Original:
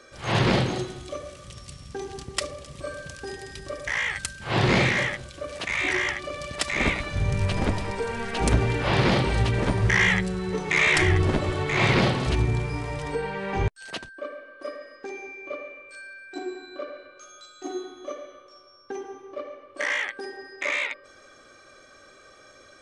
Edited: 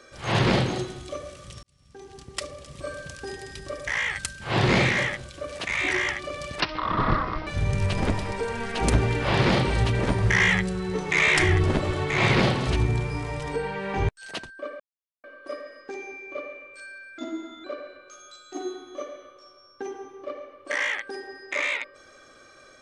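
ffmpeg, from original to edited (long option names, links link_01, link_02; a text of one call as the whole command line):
ffmpeg -i in.wav -filter_complex "[0:a]asplit=7[link_01][link_02][link_03][link_04][link_05][link_06][link_07];[link_01]atrim=end=1.63,asetpts=PTS-STARTPTS,afade=type=out:start_time=1.626:duration=0.004:curve=hsin[link_08];[link_02]atrim=start=1.63:end=6.604,asetpts=PTS-STARTPTS,afade=type=in:duration=1.24[link_09];[link_03]atrim=start=6.6:end=7.06,asetpts=PTS-STARTPTS,asetrate=23373,aresample=44100,atrim=end_sample=38275,asetpts=PTS-STARTPTS[link_10];[link_04]atrim=start=7.056:end=14.39,asetpts=PTS-STARTPTS,afade=type=out:start_time=7.33:duration=0.004:curve=hsin,apad=pad_dur=0.44[link_11];[link_05]atrim=start=14.39:end=16.334,asetpts=PTS-STARTPTS,afade=type=in:duration=0.004:curve=hsin[link_12];[link_06]atrim=start=16.33:end=16.74,asetpts=PTS-STARTPTS,asetrate=38808,aresample=44100[link_13];[link_07]atrim=start=16.736[link_14];[link_08][link_09]concat=n=2:v=0:a=1[link_15];[link_15][link_10]acrossfade=duration=0.004:curve1=hsin:curve2=hsin[link_16];[link_11][link_12]concat=n=2:v=0:a=1[link_17];[link_16][link_17]acrossfade=duration=0.004:curve1=hsin:curve2=hsin[link_18];[link_18][link_13]acrossfade=duration=0.004:curve1=hsin:curve2=hsin[link_19];[link_19][link_14]acrossfade=duration=0.004:curve1=hsin:curve2=hsin" out.wav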